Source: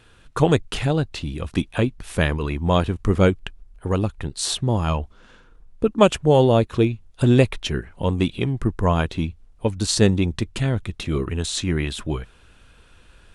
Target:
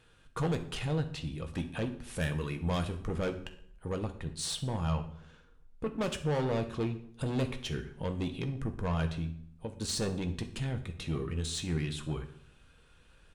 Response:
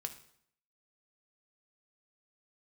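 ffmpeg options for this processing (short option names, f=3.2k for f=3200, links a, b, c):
-filter_complex "[0:a]asplit=3[a][b][c];[a]afade=t=out:st=2.15:d=0.02[d];[b]highshelf=f=5.5k:g=11,afade=t=in:st=2.15:d=0.02,afade=t=out:st=2.91:d=0.02[e];[c]afade=t=in:st=2.91:d=0.02[f];[d][e][f]amix=inputs=3:normalize=0,asettb=1/sr,asplit=3[g][h][i];[g]atrim=end=9.174[j];[h]atrim=start=9.17:end=9.81,asetpts=PTS-STARTPTS,afade=t=in:d=0.004:c=qsin,afade=t=out:st=0.636:d=0.004:c=qsin,acompressor=threshold=-27dB:ratio=3[k];[i]atrim=start=9.806[l];[j][k]acrossfade=d=0.004:c1=hsin:c2=qsin[m];[m][l]acrossfade=d=0.004:c1=qsin:c2=hsin,asoftclip=type=tanh:threshold=-18dB,asplit=2[n][o];[o]adelay=122,lowpass=f=1.1k:p=1,volume=-19dB,asplit=2[p][q];[q]adelay=122,lowpass=f=1.1k:p=1,volume=0.43,asplit=2[r][s];[s]adelay=122,lowpass=f=1.1k:p=1,volume=0.43[t];[n][p][r][t]amix=inputs=4:normalize=0[u];[1:a]atrim=start_sample=2205,asetrate=48510,aresample=44100[v];[u][v]afir=irnorm=-1:irlink=0,volume=-6.5dB"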